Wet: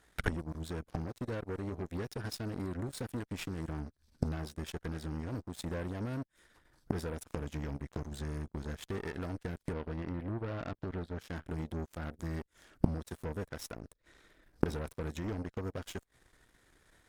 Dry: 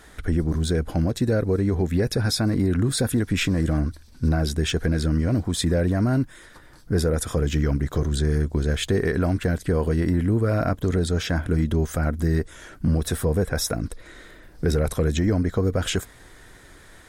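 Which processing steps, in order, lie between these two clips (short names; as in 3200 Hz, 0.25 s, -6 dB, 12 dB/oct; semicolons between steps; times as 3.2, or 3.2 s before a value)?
9.73–11.19 running mean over 6 samples; added harmonics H 5 -28 dB, 6 -27 dB, 7 -15 dB, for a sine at -11 dBFS; flipped gate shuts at -24 dBFS, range -26 dB; gain +9 dB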